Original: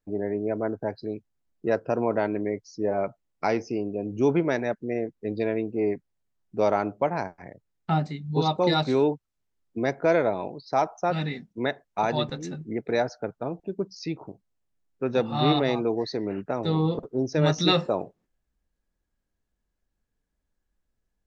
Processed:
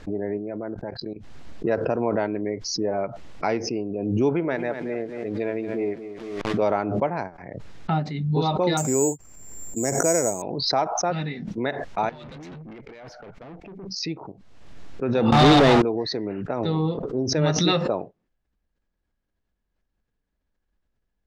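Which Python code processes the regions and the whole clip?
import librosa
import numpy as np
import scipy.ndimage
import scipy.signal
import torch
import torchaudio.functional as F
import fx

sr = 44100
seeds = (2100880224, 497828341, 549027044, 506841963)

y = fx.chain(x, sr, fx.comb(ms=5.7, depth=0.31),
    fx.level_steps(step_db=16), at=(0.37, 1.16))
y = fx.chain(y, sr, fx.lowpass(hz=3400.0, slope=12),
    fx.low_shelf(hz=250.0, db=-6.0),
    fx.echo_crushed(ms=229, feedback_pct=35, bits=8, wet_db=-10.5), at=(4.29, 6.62))
y = fx.chain(y, sr, fx.lowpass(hz=2400.0, slope=24),
    fx.resample_bad(factor=6, down='filtered', up='zero_stuff'),
    fx.peak_eq(hz=1400.0, db=-5.5, octaves=1.4), at=(8.77, 10.42))
y = fx.chain(y, sr, fx.peak_eq(hz=2200.0, db=12.0, octaves=0.39),
    fx.over_compress(threshold_db=-34.0, ratio=-1.0),
    fx.tube_stage(drive_db=38.0, bias=0.35), at=(12.09, 13.89))
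y = fx.chain(y, sr, fx.zero_step(step_db=-28.5),
    fx.leveller(passes=3), at=(15.32, 15.82))
y = scipy.signal.sosfilt(scipy.signal.butter(2, 4400.0, 'lowpass', fs=sr, output='sos'), y)
y = fx.pre_swell(y, sr, db_per_s=40.0)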